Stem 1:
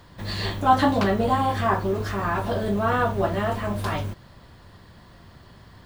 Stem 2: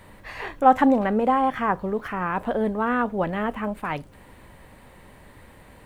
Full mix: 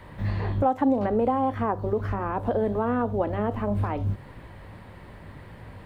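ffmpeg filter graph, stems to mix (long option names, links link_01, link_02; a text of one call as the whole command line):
ffmpeg -i stem1.wav -i stem2.wav -filter_complex "[0:a]flanger=delay=17.5:depth=3.1:speed=2.5,volume=0dB[link_01];[1:a]highpass=frequency=280:width=0.5412,highpass=frequency=280:width=1.3066,volume=-1,volume=1.5dB,asplit=2[link_02][link_03];[link_03]apad=whole_len=258221[link_04];[link_01][link_04]sidechaincompress=threshold=-31dB:ratio=8:attack=9.2:release=194[link_05];[link_05][link_02]amix=inputs=2:normalize=0,acrossover=split=980|3700[link_06][link_07][link_08];[link_06]acompressor=threshold=-21dB:ratio=4[link_09];[link_07]acompressor=threshold=-45dB:ratio=4[link_10];[link_08]acompressor=threshold=-53dB:ratio=4[link_11];[link_09][link_10][link_11]amix=inputs=3:normalize=0,bass=frequency=250:gain=8,treble=frequency=4000:gain=-11" out.wav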